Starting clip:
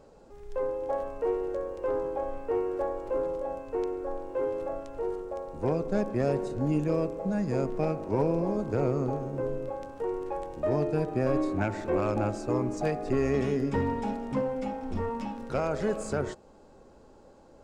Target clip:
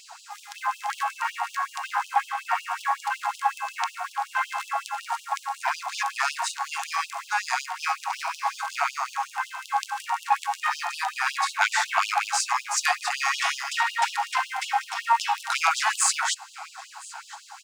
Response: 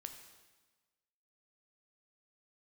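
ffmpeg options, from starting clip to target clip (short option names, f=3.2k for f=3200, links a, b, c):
-filter_complex "[0:a]bass=f=250:g=13,treble=f=4k:g=2,apsyclip=32dB,asplit=2[a][b];[b]aecho=0:1:1015|2030:0.0891|0.0294[c];[a][c]amix=inputs=2:normalize=0,afftfilt=real='re*gte(b*sr/1024,680*pow(2800/680,0.5+0.5*sin(2*PI*5.4*pts/sr)))':imag='im*gte(b*sr/1024,680*pow(2800/680,0.5+0.5*sin(2*PI*5.4*pts/sr)))':win_size=1024:overlap=0.75,volume=-8.5dB"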